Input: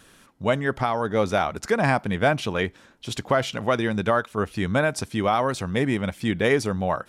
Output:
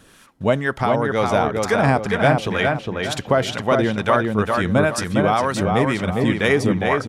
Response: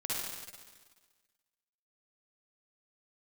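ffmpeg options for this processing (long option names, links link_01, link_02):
-filter_complex "[0:a]asplit=2[link_01][link_02];[link_02]adelay=408,lowpass=frequency=2800:poles=1,volume=-3dB,asplit=2[link_03][link_04];[link_04]adelay=408,lowpass=frequency=2800:poles=1,volume=0.38,asplit=2[link_05][link_06];[link_06]adelay=408,lowpass=frequency=2800:poles=1,volume=0.38,asplit=2[link_07][link_08];[link_08]adelay=408,lowpass=frequency=2800:poles=1,volume=0.38,asplit=2[link_09][link_10];[link_10]adelay=408,lowpass=frequency=2800:poles=1,volume=0.38[link_11];[link_03][link_05][link_07][link_09][link_11]amix=inputs=5:normalize=0[link_12];[link_01][link_12]amix=inputs=2:normalize=0,acrossover=split=780[link_13][link_14];[link_13]aeval=exprs='val(0)*(1-0.5/2+0.5/2*cos(2*PI*2.1*n/s))':channel_layout=same[link_15];[link_14]aeval=exprs='val(0)*(1-0.5/2-0.5/2*cos(2*PI*2.1*n/s))':channel_layout=same[link_16];[link_15][link_16]amix=inputs=2:normalize=0,volume=5.5dB"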